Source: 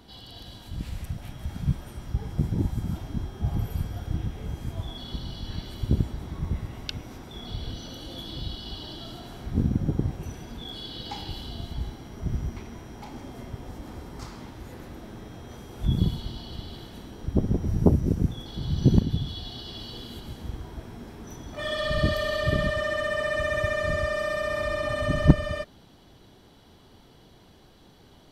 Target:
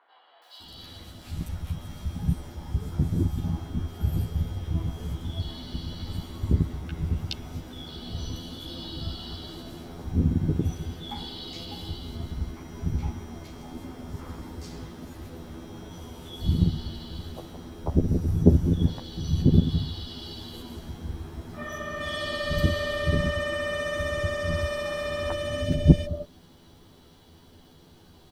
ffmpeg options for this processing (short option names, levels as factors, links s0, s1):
-filter_complex "[0:a]asplit=2[s0][s1];[s1]adelay=12,volume=0.794[s2];[s0][s2]amix=inputs=2:normalize=0,acrusher=bits=10:mix=0:aa=0.000001,acrossover=split=660|2100[s3][s4][s5];[s5]adelay=420[s6];[s3]adelay=600[s7];[s7][s4][s6]amix=inputs=3:normalize=0,volume=0.891"